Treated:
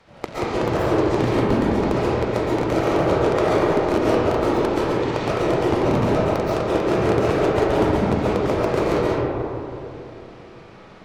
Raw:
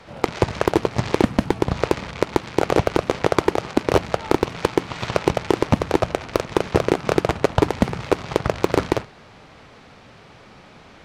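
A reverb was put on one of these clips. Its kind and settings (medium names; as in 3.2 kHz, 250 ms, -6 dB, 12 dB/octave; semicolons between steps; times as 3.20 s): algorithmic reverb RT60 3 s, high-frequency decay 0.3×, pre-delay 95 ms, DRR -9.5 dB; trim -9.5 dB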